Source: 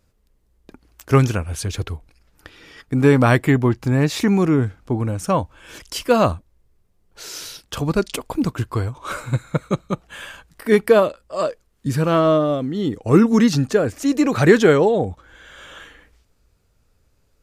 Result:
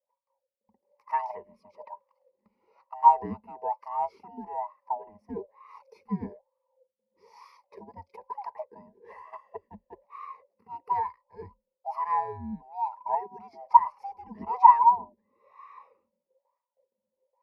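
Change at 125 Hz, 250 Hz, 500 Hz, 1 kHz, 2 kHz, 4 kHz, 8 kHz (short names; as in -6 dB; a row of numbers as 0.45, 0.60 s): -28.5 dB, -24.5 dB, -23.5 dB, +3.0 dB, -24.5 dB, under -35 dB, under -40 dB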